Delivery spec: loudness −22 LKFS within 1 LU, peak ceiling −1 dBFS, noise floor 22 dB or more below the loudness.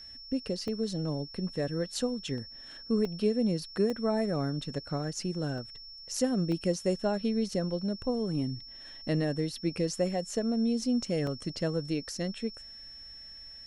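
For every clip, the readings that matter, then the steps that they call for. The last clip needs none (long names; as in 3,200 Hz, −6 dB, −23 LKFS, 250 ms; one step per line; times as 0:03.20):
number of dropouts 7; longest dropout 1.6 ms; interfering tone 5,400 Hz; level of the tone −45 dBFS; integrated loudness −31.5 LKFS; sample peak −16.0 dBFS; target loudness −22.0 LKFS
→ repair the gap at 0:00.68/0:02.38/0:03.05/0:03.90/0:05.58/0:06.52/0:11.27, 1.6 ms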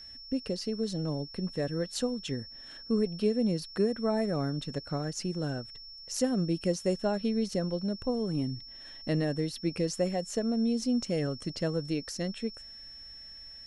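number of dropouts 0; interfering tone 5,400 Hz; level of the tone −45 dBFS
→ notch filter 5,400 Hz, Q 30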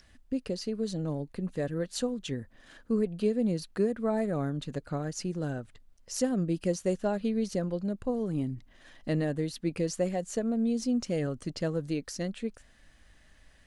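interfering tone none found; integrated loudness −32.0 LKFS; sample peak −16.0 dBFS; target loudness −22.0 LKFS
→ level +10 dB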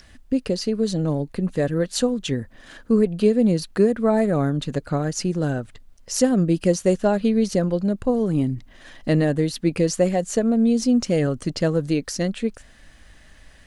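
integrated loudness −22.0 LKFS; sample peak −6.0 dBFS; background noise floor −50 dBFS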